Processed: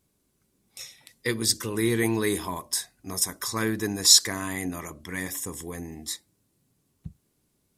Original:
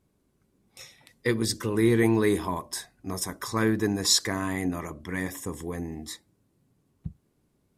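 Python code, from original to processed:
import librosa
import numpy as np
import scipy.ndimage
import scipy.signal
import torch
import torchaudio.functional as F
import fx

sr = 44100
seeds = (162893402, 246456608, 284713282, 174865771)

y = fx.high_shelf(x, sr, hz=2700.0, db=12.0)
y = F.gain(torch.from_numpy(y), -3.5).numpy()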